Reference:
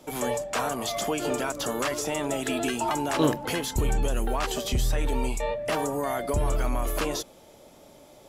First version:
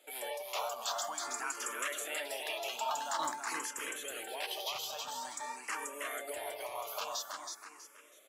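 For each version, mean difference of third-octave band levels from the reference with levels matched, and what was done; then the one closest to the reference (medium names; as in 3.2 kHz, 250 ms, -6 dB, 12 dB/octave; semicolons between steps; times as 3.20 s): 10.5 dB: high-pass 860 Hz 12 dB/octave; feedback delay 323 ms, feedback 39%, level -4 dB; barber-pole phaser +0.48 Hz; trim -4 dB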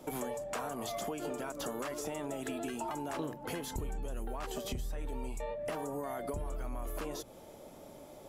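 3.5 dB: peaking EQ 4.2 kHz -6.5 dB 2.6 oct; hum notches 60/120 Hz; compression 10:1, threshold -36 dBFS, peak gain reduction 18.5 dB; trim +1 dB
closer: second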